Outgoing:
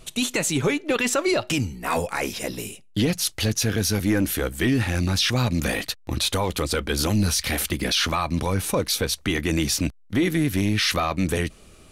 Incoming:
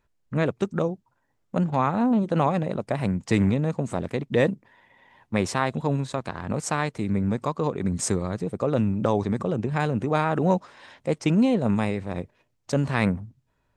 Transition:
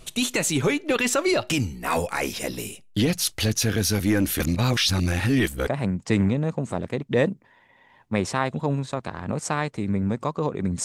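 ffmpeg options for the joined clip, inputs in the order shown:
-filter_complex "[0:a]apad=whole_dur=10.84,atrim=end=10.84,asplit=2[s0][s1];[s0]atrim=end=4.402[s2];[s1]atrim=start=4.398:end=5.672,asetpts=PTS-STARTPTS,areverse[s3];[1:a]atrim=start=2.878:end=8.05[s4];[s2][s3]acrossfade=d=0.004:c1=hsin:c2=hsin[s5];[s5][s4]acrossfade=d=0.004:c1=hsin:c2=hsin"

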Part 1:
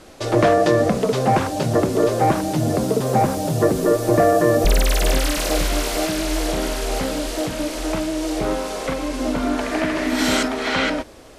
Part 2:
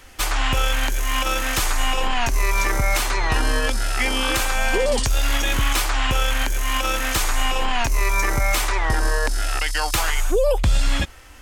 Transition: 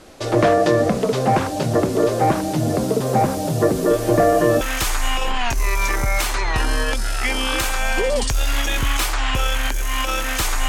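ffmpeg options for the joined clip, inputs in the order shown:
-filter_complex "[1:a]asplit=2[s0][s1];[0:a]apad=whole_dur=10.68,atrim=end=10.68,atrim=end=4.612[s2];[s1]atrim=start=1.368:end=7.44[s3];[s0]atrim=start=0.66:end=1.37,asetpts=PTS-STARTPTS,volume=0.168,afade=t=in:d=0.004:c=hsin,afade=t=out:st=0.706:d=0.004:c=hsin,adelay=3900[s4];[s2][s3]acrossfade=d=0.004:c1=hsin:c2=hsin[s5];[s5][s4]amix=inputs=2:normalize=0"

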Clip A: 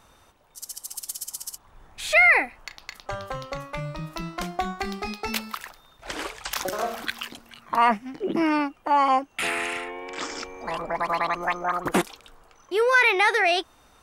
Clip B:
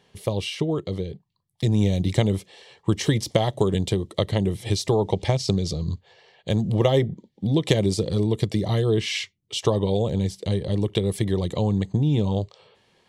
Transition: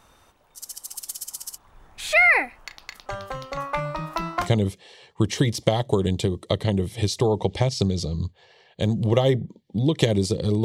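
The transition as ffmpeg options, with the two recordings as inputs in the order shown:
-filter_complex "[0:a]asettb=1/sr,asplit=3[s0][s1][s2];[s0]atrim=end=3.574[s3];[s1]atrim=start=3.57:end=4.52,asetpts=PTS-STARTPTS,afade=t=in:d=0.004:c=qsin,afade=t=out:st=0.946:d=0.004:c=qsin,equalizer=f=1000:t=o:w=1.8:g=11[s4];[s2]atrim=start=4.516[s5];[s3][s4]acrossfade=d=0.004:c1=hsin:c2=qsin[s6];[s6][s5]acrossfade=d=0.004:c1=qsin:c2=hsin,apad=whole_dur=10.64,atrim=end=10.64,atrim=end=4.52,asetpts=PTS-STARTPTS[s7];[1:a]atrim=start=2.06:end=8.32,asetpts=PTS-STARTPTS[s8];[s7][s8]acrossfade=d=0.14:c1=tri:c2=tri"

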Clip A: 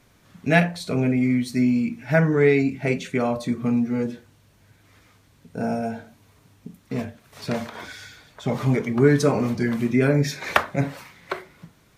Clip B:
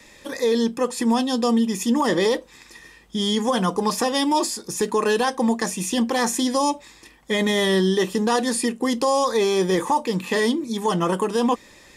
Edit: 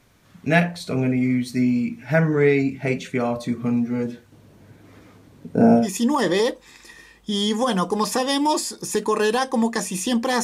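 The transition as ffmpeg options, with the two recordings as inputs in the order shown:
-filter_complex "[0:a]asettb=1/sr,asplit=3[s0][s1][s2];[s0]atrim=end=4.324[s3];[s1]atrim=start=4.32:end=5.88,asetpts=PTS-STARTPTS,afade=t=in:d=0.004:c=qsin,afade=t=out:st=1.556:d=0.004:c=qsin,equalizer=f=310:t=o:w=3:g=13.5[s4];[s2]atrim=start=5.876[s5];[s3][s4]acrossfade=d=0.004:c1=hsin:c2=qsin[s6];[s6][s5]acrossfade=d=0.004:c1=qsin:c2=hsin,apad=whole_dur=10.43,atrim=end=10.43,atrim=end=5.88,asetpts=PTS-STARTPTS[s7];[1:a]atrim=start=1.62:end=6.29,asetpts=PTS-STARTPTS[s8];[s7][s8]acrossfade=d=0.12:c1=tri:c2=tri"

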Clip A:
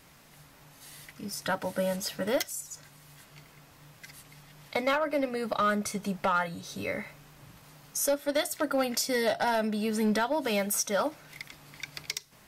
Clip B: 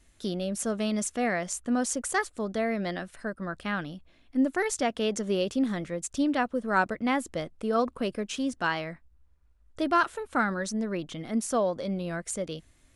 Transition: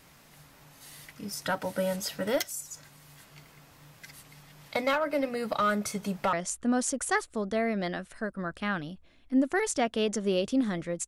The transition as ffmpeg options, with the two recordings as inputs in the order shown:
-filter_complex "[0:a]apad=whole_dur=11.07,atrim=end=11.07,atrim=end=6.332[s0];[1:a]atrim=start=1.358:end=6.1[s1];[s0][s1]acrossfade=d=0.004:c1=hsin:c2=hsin"

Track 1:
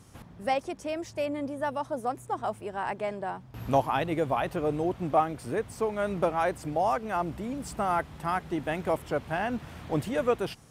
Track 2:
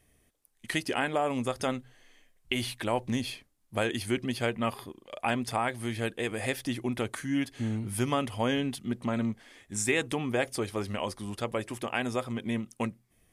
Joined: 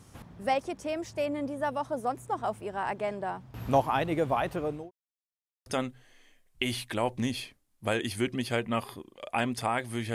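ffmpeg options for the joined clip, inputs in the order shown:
-filter_complex "[0:a]apad=whole_dur=10.14,atrim=end=10.14,asplit=2[s0][s1];[s0]atrim=end=4.91,asetpts=PTS-STARTPTS,afade=t=out:st=4.36:d=0.55:c=qsin[s2];[s1]atrim=start=4.91:end=5.66,asetpts=PTS-STARTPTS,volume=0[s3];[1:a]atrim=start=1.56:end=6.04,asetpts=PTS-STARTPTS,afade=t=in:d=0.004:c=hsin[s4];[s2][s3][s4]concat=n=3:v=0:a=1"

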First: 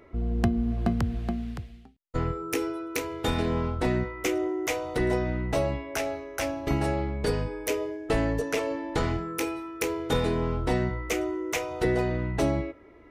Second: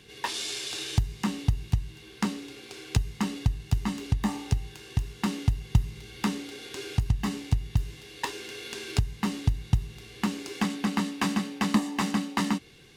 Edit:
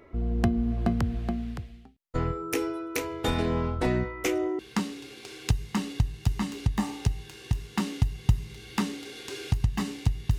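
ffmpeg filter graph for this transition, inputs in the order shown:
-filter_complex "[0:a]apad=whole_dur=10.38,atrim=end=10.38,atrim=end=4.592[s0];[1:a]atrim=start=2.048:end=7.84[s1];[s0][s1]acrossfade=d=0.004:c1=hsin:c2=hsin"

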